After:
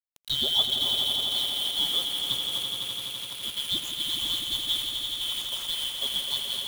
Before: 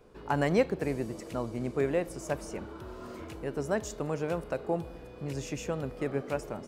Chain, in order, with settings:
band-splitting scrambler in four parts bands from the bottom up 2413
mains-hum notches 50/100/150 Hz
spectral peaks only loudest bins 64
bit-depth reduction 6 bits, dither none
echo that builds up and dies away 84 ms, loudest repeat 5, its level −8.5 dB

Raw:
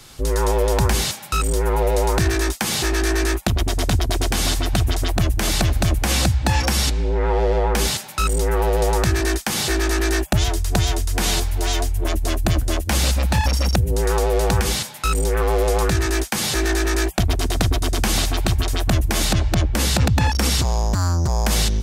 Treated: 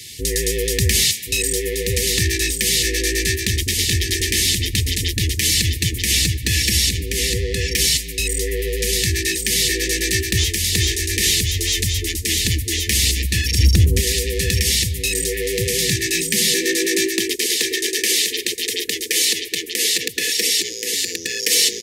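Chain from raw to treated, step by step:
linear-phase brick-wall band-stop 500–1,700 Hz
single-tap delay 1,078 ms −4 dB
speech leveller 2 s
0:13.58–0:14.00: low-shelf EQ 400 Hz +9.5 dB
high-pass filter sweep 80 Hz → 450 Hz, 0:15.35–0:17.57
tilt shelving filter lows −6.5 dB, about 840 Hz
soft clipping −3 dBFS, distortion −26 dB

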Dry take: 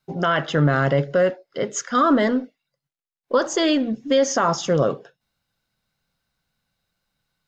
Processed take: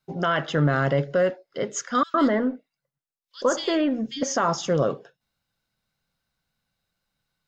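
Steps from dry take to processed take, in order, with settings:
0:02.03–0:04.23: multiband delay without the direct sound highs, lows 110 ms, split 2,700 Hz
level −3 dB

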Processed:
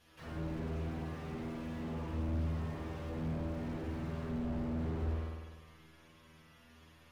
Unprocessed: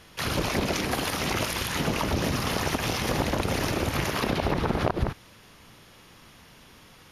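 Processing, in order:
stiff-string resonator 79 Hz, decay 0.3 s, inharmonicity 0.002
spring reverb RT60 1.3 s, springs 50 ms, chirp 70 ms, DRR −4 dB
slew-rate limiting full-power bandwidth 9.9 Hz
level −6.5 dB

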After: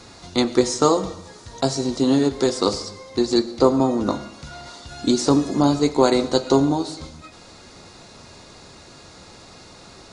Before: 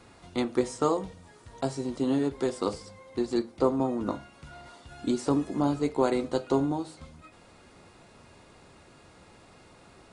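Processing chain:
flat-topped bell 5,100 Hz +9 dB 1.1 octaves
comb and all-pass reverb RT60 0.87 s, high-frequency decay 0.9×, pre-delay 55 ms, DRR 15.5 dB
level +8.5 dB

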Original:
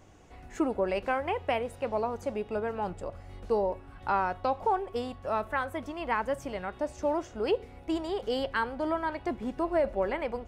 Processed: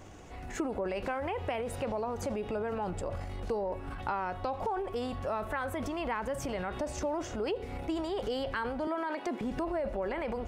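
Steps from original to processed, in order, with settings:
0:08.87–0:09.41: high-pass filter 250 Hz 24 dB per octave
transient designer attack −2 dB, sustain +8 dB
downward compressor 5 to 1, threshold −37 dBFS, peak gain reduction 13 dB
level +5.5 dB

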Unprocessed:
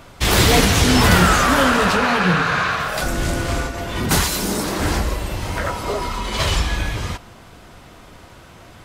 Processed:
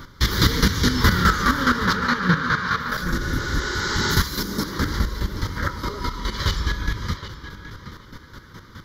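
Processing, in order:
square-wave tremolo 4.8 Hz, depth 65%, duty 25%
in parallel at +1 dB: downward compressor, threshold −31 dBFS, peak gain reduction 18.5 dB
on the sum: phaser with its sweep stopped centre 2,600 Hz, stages 6
on a send: tape delay 771 ms, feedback 24%, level −9.5 dB, low-pass 3,300 Hz
on the sum: healed spectral selection 0:03.23–0:04.13, 340–8,400 Hz both

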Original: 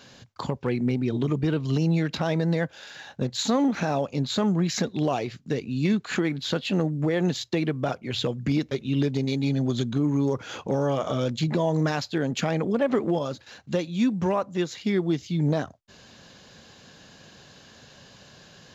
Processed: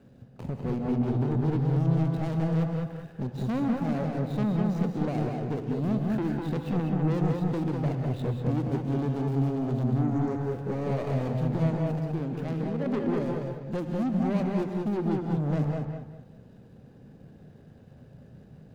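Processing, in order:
running median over 41 samples
low-shelf EQ 440 Hz +7.5 dB
0:11.74–0:12.86: output level in coarse steps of 13 dB
soft clipping −20.5 dBFS, distortion −10 dB
on a send: feedback echo with a low-pass in the loop 201 ms, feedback 29%, low-pass 2,800 Hz, level −3 dB
on the sum: reverb whose tail is shaped and stops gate 220 ms rising, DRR 5 dB
level −5 dB

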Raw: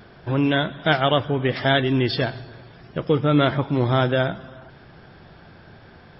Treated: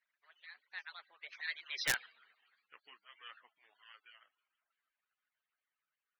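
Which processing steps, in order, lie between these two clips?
harmonic-percussive split with one part muted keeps percussive
source passing by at 0:01.95, 52 m/s, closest 5 metres
four-pole ladder band-pass 2,300 Hz, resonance 35%
wrap-around overflow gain 32 dB
level +9 dB

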